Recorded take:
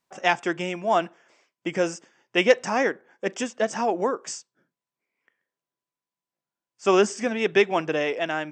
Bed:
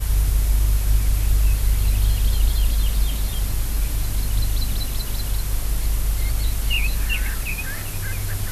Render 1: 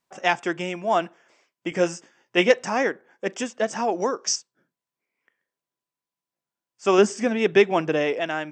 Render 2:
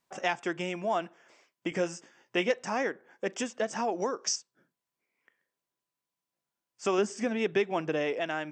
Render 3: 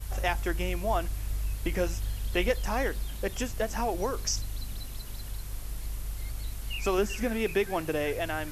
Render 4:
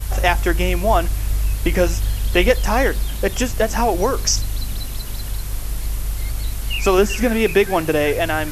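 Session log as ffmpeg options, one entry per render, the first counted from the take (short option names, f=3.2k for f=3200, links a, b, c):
-filter_complex "[0:a]asettb=1/sr,asplit=3[a][b][c];[a]atrim=end=1.704[d];[b]atrim=start=1.7:end=2.51,asetpts=PTS-STARTPTS,afade=t=in:d=0.004:c=qsin,afade=t=out:st=0.806:d=0.004:c=qsin,asplit=2[e][f];[f]adelay=17,volume=-5.5dB[g];[e][g]amix=inputs=2:normalize=0,atrim=end_sample=35721[h];[c]atrim=start=2.506[i];[d][h]acrossfade=d=0.004:c1=hsin:c2=qsin[j];[j][i]acrossfade=d=0.004:c1=qsin:c2=hsin,asettb=1/sr,asplit=3[k][l][m];[k]atrim=end=3.924[n];[l]atrim=start=3.92:end=4.36,asetpts=PTS-STARTPTS,afade=t=in:d=0.004:c=qsin,afade=t=out:st=0.436:d=0.004:c=qsin,lowpass=f=5.7k:t=q:w=6.2[o];[m]atrim=start=4.356[p];[n][o]acrossfade=d=0.004:c1=hsin:c2=qsin[q];[q][p]acrossfade=d=0.004:c1=qsin:c2=hsin,asettb=1/sr,asplit=3[r][s][t];[r]atrim=end=6.984[u];[s]atrim=start=6.98:end=8.21,asetpts=PTS-STARTPTS,afade=t=in:d=0.004:c=qsin,afade=t=out:st=1.226:d=0.004:c=qsin,lowshelf=f=500:g=5[v];[t]atrim=start=8.206[w];[u][v]acrossfade=d=0.004:c1=hsin:c2=qsin[x];[x][w]acrossfade=d=0.004:c1=qsin:c2=hsin"
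-af "acompressor=threshold=-32dB:ratio=2"
-filter_complex "[1:a]volume=-14dB[a];[0:a][a]amix=inputs=2:normalize=0"
-af "volume=12dB"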